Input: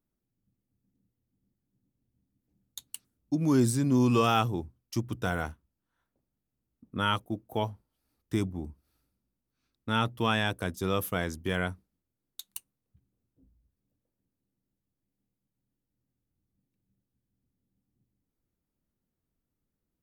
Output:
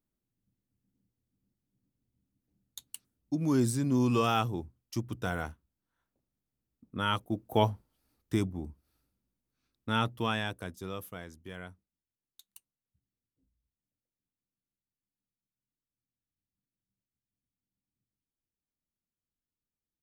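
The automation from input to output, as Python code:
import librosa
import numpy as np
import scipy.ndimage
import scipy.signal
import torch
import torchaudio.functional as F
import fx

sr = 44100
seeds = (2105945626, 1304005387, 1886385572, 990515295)

y = fx.gain(x, sr, db=fx.line((7.04, -3.0), (7.68, 6.0), (8.53, -1.5), (10.04, -1.5), (11.28, -14.0)))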